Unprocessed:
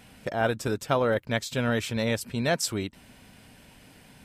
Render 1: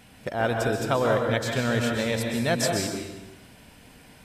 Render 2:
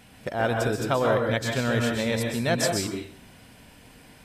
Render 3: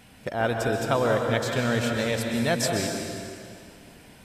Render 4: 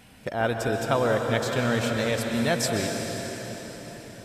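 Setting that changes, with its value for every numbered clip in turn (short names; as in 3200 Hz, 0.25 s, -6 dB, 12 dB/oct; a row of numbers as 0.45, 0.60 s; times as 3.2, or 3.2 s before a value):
plate-style reverb, RT60: 1.1, 0.51, 2.4, 5.1 s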